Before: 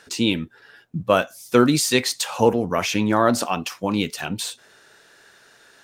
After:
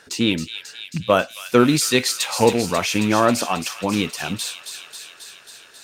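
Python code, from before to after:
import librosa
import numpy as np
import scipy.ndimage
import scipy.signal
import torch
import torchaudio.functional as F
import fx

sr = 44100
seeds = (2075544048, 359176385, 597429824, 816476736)

y = fx.rattle_buzz(x, sr, strikes_db=-21.0, level_db=-22.0)
y = fx.echo_wet_highpass(y, sr, ms=270, feedback_pct=72, hz=2600.0, wet_db=-6.5)
y = F.gain(torch.from_numpy(y), 1.0).numpy()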